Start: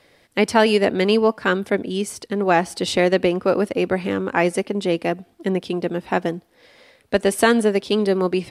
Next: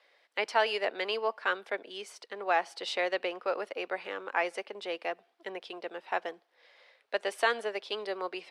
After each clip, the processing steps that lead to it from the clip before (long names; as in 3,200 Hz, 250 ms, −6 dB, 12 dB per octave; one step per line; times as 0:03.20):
high-pass filter 300 Hz 12 dB per octave
three-way crossover with the lows and the highs turned down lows −22 dB, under 490 Hz, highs −15 dB, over 5,300 Hz
level −8 dB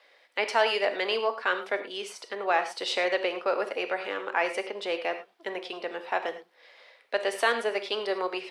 in parallel at −1.5 dB: brickwall limiter −25 dBFS, peak gain reduction 11 dB
on the sum: reverb whose tail is shaped and stops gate 130 ms flat, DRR 7.5 dB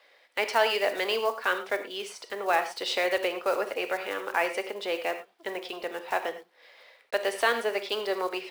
one scale factor per block 5 bits